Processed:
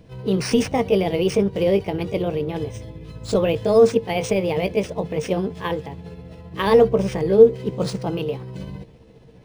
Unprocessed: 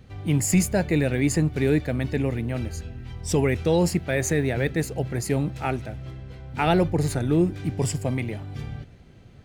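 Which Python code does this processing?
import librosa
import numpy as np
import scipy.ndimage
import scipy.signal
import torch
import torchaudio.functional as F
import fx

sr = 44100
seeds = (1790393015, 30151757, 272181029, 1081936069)

y = fx.pitch_heads(x, sr, semitones=4.5)
y = fx.peak_eq(y, sr, hz=460.0, db=14.0, octaves=0.22)
y = np.interp(np.arange(len(y)), np.arange(len(y))[::3], y[::3])
y = y * 10.0 ** (1.0 / 20.0)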